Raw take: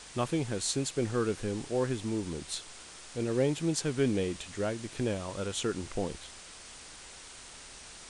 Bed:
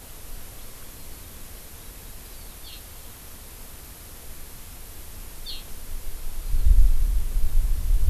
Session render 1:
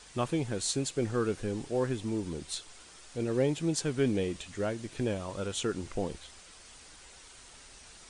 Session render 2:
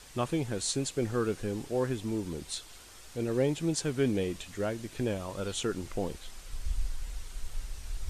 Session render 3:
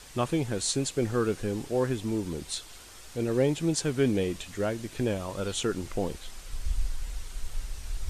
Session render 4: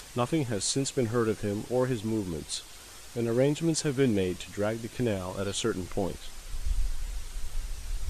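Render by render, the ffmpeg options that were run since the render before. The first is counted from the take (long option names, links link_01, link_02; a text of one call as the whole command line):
ffmpeg -i in.wav -af "afftdn=noise_reduction=6:noise_floor=-49" out.wav
ffmpeg -i in.wav -i bed.wav -filter_complex "[1:a]volume=-16dB[link_01];[0:a][link_01]amix=inputs=2:normalize=0" out.wav
ffmpeg -i in.wav -af "volume=3dB" out.wav
ffmpeg -i in.wav -af "acompressor=mode=upward:threshold=-42dB:ratio=2.5" out.wav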